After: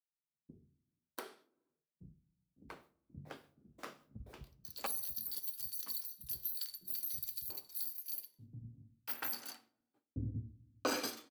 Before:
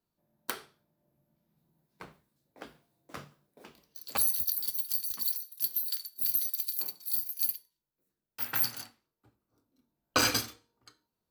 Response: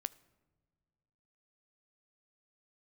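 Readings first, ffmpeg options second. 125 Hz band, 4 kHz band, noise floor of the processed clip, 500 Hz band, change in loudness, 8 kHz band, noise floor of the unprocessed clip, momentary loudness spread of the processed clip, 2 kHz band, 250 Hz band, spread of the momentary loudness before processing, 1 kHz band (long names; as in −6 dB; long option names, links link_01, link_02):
can't be measured, −10.5 dB, below −85 dBFS, −4.0 dB, −10.5 dB, −11.0 dB, below −85 dBFS, 18 LU, −10.5 dB, −4.0 dB, 18 LU, −8.0 dB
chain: -filter_complex "[0:a]agate=range=-33dB:threshold=-57dB:ratio=3:detection=peak,lowshelf=frequency=180:gain=9,acrossover=split=880[link_01][link_02];[link_02]alimiter=limit=-24dB:level=0:latency=1:release=238[link_03];[link_01][link_03]amix=inputs=2:normalize=0,acrossover=split=240[link_04][link_05];[link_05]adelay=690[link_06];[link_04][link_06]amix=inputs=2:normalize=0[link_07];[1:a]atrim=start_sample=2205,asetrate=88200,aresample=44100[link_08];[link_07][link_08]afir=irnorm=-1:irlink=0,volume=4dB"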